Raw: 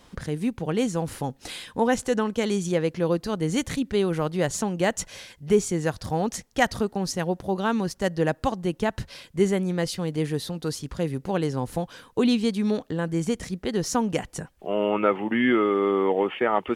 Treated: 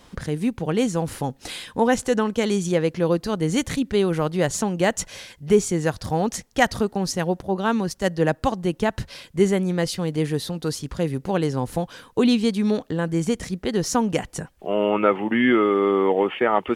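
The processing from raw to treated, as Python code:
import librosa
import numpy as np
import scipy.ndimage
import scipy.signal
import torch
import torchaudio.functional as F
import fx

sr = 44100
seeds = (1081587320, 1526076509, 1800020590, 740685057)

y = fx.band_widen(x, sr, depth_pct=40, at=(7.42, 8.43))
y = F.gain(torch.from_numpy(y), 3.0).numpy()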